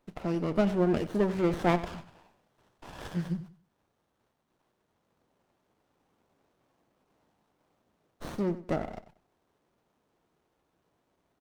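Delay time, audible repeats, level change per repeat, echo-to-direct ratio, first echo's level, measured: 93 ms, 2, -11.5 dB, -14.5 dB, -15.0 dB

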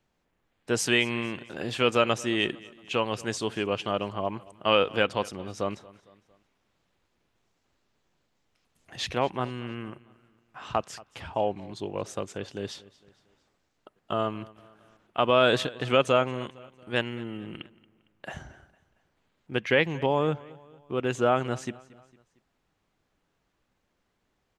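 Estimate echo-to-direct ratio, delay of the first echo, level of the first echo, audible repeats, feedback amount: -20.5 dB, 228 ms, -21.5 dB, 3, 48%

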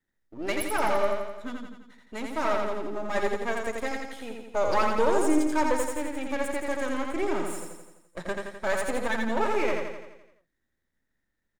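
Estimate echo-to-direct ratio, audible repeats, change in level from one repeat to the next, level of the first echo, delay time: -2.0 dB, 7, -5.0 dB, -3.5 dB, 85 ms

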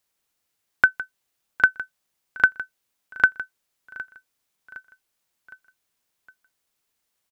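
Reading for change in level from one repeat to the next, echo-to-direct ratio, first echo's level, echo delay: -6.0 dB, -17.0 dB, -18.0 dB, 762 ms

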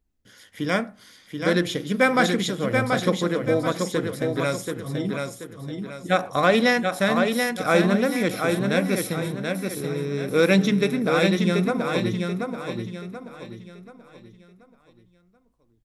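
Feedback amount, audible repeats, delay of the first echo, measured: 38%, 4, 732 ms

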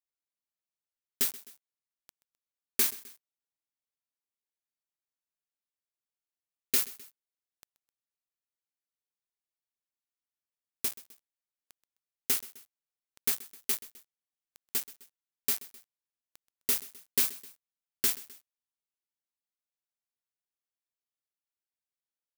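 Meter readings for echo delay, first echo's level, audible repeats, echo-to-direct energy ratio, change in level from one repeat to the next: 129 ms, -19.0 dB, 2, -18.0 dB, -5.5 dB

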